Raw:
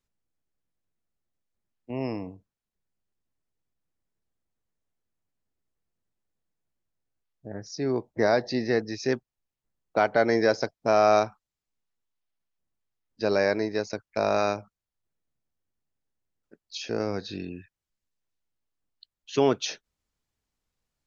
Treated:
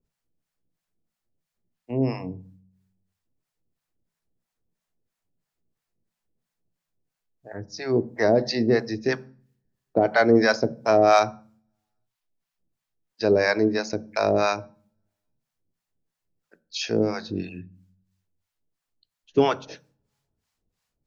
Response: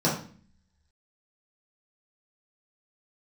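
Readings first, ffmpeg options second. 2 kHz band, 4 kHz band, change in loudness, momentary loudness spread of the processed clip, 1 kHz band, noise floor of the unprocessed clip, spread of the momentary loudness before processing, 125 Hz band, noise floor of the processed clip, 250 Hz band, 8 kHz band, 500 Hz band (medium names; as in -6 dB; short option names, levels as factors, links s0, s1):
+4.0 dB, +3.5 dB, +3.5 dB, 16 LU, +2.5 dB, under -85 dBFS, 16 LU, +5.5 dB, -85 dBFS, +5.0 dB, no reading, +3.0 dB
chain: -filter_complex "[0:a]acrossover=split=630[s0][s1];[s0]aeval=exprs='val(0)*(1-1/2+1/2*cos(2*PI*3*n/s))':c=same[s2];[s1]aeval=exprs='val(0)*(1-1/2-1/2*cos(2*PI*3*n/s))':c=same[s3];[s2][s3]amix=inputs=2:normalize=0,asplit=2[s4][s5];[1:a]atrim=start_sample=2205,lowshelf=f=170:g=10[s6];[s5][s6]afir=irnorm=-1:irlink=0,volume=0.0335[s7];[s4][s7]amix=inputs=2:normalize=0,acontrast=77,volume=1.12"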